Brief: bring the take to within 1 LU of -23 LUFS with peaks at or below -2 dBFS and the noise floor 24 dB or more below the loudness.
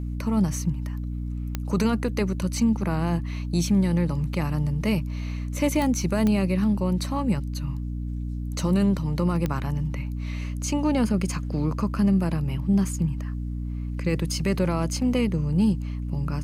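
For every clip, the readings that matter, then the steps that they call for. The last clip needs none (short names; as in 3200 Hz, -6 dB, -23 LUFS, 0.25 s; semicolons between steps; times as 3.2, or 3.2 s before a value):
clicks 4; hum 60 Hz; harmonics up to 300 Hz; hum level -27 dBFS; loudness -25.5 LUFS; peak -11.0 dBFS; loudness target -23.0 LUFS
-> de-click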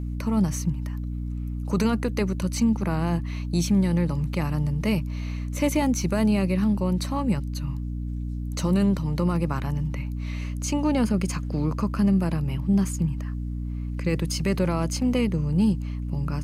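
clicks 0; hum 60 Hz; harmonics up to 300 Hz; hum level -27 dBFS
-> notches 60/120/180/240/300 Hz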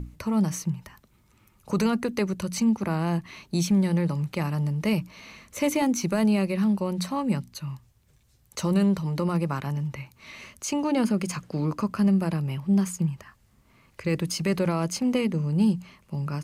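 hum none; loudness -26.5 LUFS; peak -13.0 dBFS; loudness target -23.0 LUFS
-> gain +3.5 dB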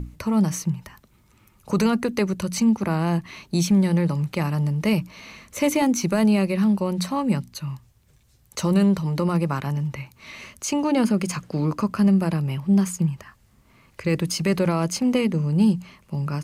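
loudness -22.5 LUFS; peak -9.5 dBFS; noise floor -59 dBFS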